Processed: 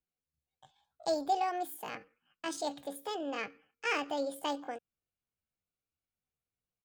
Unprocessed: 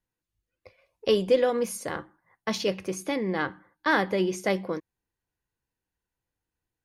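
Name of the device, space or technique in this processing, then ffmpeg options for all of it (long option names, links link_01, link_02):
chipmunk voice: -af "asetrate=66075,aresample=44100,atempo=0.66742,volume=-9dB"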